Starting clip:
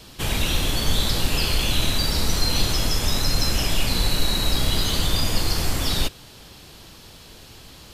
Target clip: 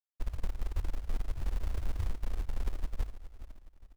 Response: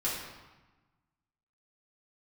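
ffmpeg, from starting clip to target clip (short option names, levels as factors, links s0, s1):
-af "asetrate=88200,aresample=44100,afftfilt=real='re*gte(hypot(re,im),1)':imag='im*gte(hypot(re,im),1)':win_size=1024:overlap=0.75,lowshelf=f=340:g=-3,bandreject=f=50:t=h:w=6,bandreject=f=100:t=h:w=6,bandreject=f=150:t=h:w=6,aecho=1:1:413|826|1239:0.106|0.0434|0.0178,acompressor=threshold=0.0282:ratio=6,acrusher=bits=4:mode=log:mix=0:aa=0.000001,volume=1.58"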